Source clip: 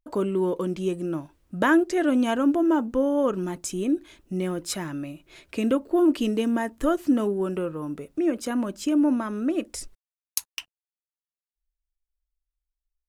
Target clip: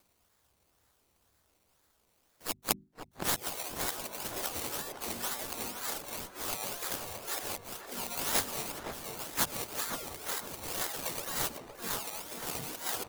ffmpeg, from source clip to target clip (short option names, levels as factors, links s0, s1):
-filter_complex "[0:a]areverse,acompressor=threshold=0.0355:ratio=6,asetrate=72056,aresample=44100,atempo=0.612027,highpass=180,afftfilt=real='re*lt(hypot(re,im),0.0708)':imag='im*lt(hypot(re,im),0.0708)':win_size=1024:overlap=0.75,acrusher=samples=21:mix=1:aa=0.000001:lfo=1:lforange=12.6:lforate=2,bandreject=f=50:t=h:w=6,bandreject=f=100:t=h:w=6,bandreject=f=150:t=h:w=6,bandreject=f=200:t=h:w=6,bandreject=f=250:t=h:w=6,crystalizer=i=5:c=0,asplit=2[s0][s1];[s1]adelay=515,lowpass=f=1000:p=1,volume=0.631,asplit=2[s2][s3];[s3]adelay=515,lowpass=f=1000:p=1,volume=0.42,asplit=2[s4][s5];[s5]adelay=515,lowpass=f=1000:p=1,volume=0.42,asplit=2[s6][s7];[s7]adelay=515,lowpass=f=1000:p=1,volume=0.42,asplit=2[s8][s9];[s9]adelay=515,lowpass=f=1000:p=1,volume=0.42[s10];[s2][s4][s6][s8][s10]amix=inputs=5:normalize=0[s11];[s0][s11]amix=inputs=2:normalize=0,asplit=3[s12][s13][s14];[s13]asetrate=35002,aresample=44100,atempo=1.25992,volume=0.562[s15];[s14]asetrate=66075,aresample=44100,atempo=0.66742,volume=0.562[s16];[s12][s15][s16]amix=inputs=3:normalize=0,acompressor=mode=upward:threshold=0.00316:ratio=2.5,volume=0.891"